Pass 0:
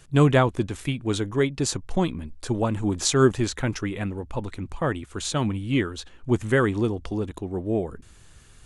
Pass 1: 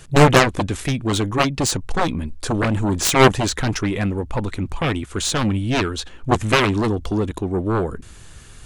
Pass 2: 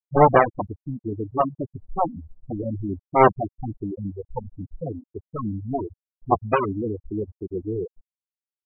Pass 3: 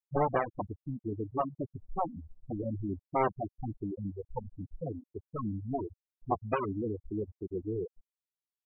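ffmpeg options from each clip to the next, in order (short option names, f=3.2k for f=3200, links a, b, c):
-af "aeval=exprs='0.531*(cos(1*acos(clip(val(0)/0.531,-1,1)))-cos(1*PI/2))+0.211*(cos(7*acos(clip(val(0)/0.531,-1,1)))-cos(7*PI/2))':c=same,volume=4dB"
-af "afftfilt=real='re*gte(hypot(re,im),0.447)':imag='im*gte(hypot(re,im),0.447)':win_size=1024:overlap=0.75,equalizer=f=790:w=0.74:g=13,volume=-9.5dB"
-af "aeval=exprs='0.891*(cos(1*acos(clip(val(0)/0.891,-1,1)))-cos(1*PI/2))+0.00562*(cos(3*acos(clip(val(0)/0.891,-1,1)))-cos(3*PI/2))':c=same,acompressor=threshold=-21dB:ratio=2.5,volume=-6.5dB"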